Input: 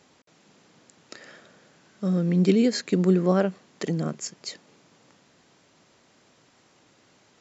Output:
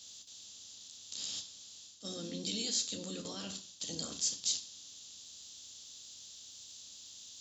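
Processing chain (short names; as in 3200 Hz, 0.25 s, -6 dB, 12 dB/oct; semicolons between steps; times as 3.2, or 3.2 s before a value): spectral limiter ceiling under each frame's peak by 20 dB; level quantiser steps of 13 dB; bell 970 Hz -12 dB 2.9 oct; reverse; compressor 6:1, threshold -42 dBFS, peak gain reduction 13 dB; reverse; limiter -38 dBFS, peak gain reduction 10 dB; HPF 110 Hz 6 dB/oct; resonant high shelf 2700 Hz +8.5 dB, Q 3; on a send: reverb RT60 0.40 s, pre-delay 3 ms, DRR 2 dB; on the sum: gain +3 dB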